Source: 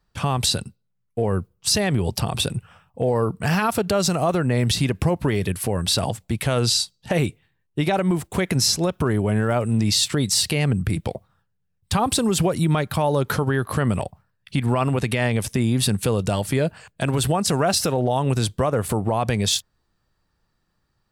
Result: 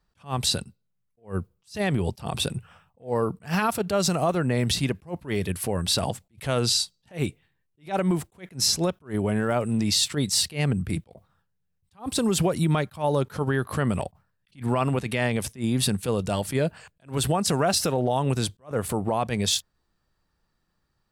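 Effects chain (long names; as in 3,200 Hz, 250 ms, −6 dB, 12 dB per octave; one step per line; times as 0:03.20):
parametric band 110 Hz −6 dB 0.24 octaves
level that may rise only so fast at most 250 dB per second
level −2.5 dB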